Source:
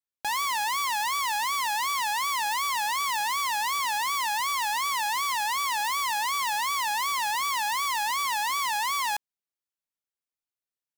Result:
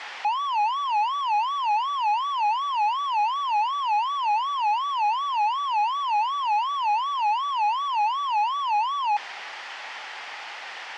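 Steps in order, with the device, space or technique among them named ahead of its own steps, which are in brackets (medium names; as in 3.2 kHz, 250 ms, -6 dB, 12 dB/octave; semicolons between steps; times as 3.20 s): home computer beeper (one-bit comparator; cabinet simulation 760–4000 Hz, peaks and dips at 820 Hz +9 dB, 1.9 kHz +5 dB, 3.9 kHz -7 dB); trim +1.5 dB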